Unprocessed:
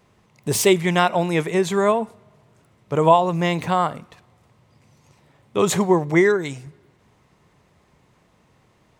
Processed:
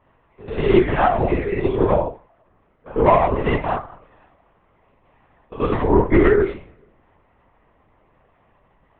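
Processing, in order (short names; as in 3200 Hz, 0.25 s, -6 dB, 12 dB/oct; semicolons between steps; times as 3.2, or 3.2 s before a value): stepped spectrum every 0.1 s; HPF 290 Hz 24 dB/oct; notches 60/120/180/240/300/360/420 Hz; 1.34–3.05 envelope flanger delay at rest 2.5 ms, full sweep at -22 dBFS; 3.73–5.6 compressor 16:1, threshold -36 dBFS, peak gain reduction 21 dB; tremolo saw up 12 Hz, depth 35%; overloaded stage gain 17 dB; reverb RT60 0.30 s, pre-delay 3 ms, DRR -4.5 dB; LPC vocoder at 8 kHz whisper; gain -10 dB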